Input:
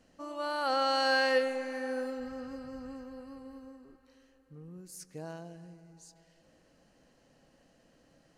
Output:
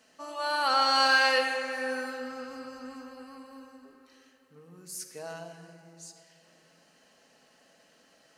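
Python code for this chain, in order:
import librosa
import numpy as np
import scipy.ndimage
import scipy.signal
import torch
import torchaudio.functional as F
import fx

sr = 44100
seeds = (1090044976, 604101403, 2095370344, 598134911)

y = fx.highpass(x, sr, hz=1100.0, slope=6)
y = fx.room_shoebox(y, sr, seeds[0], volume_m3=3800.0, walls='mixed', distance_m=1.5)
y = y * librosa.db_to_amplitude(7.5)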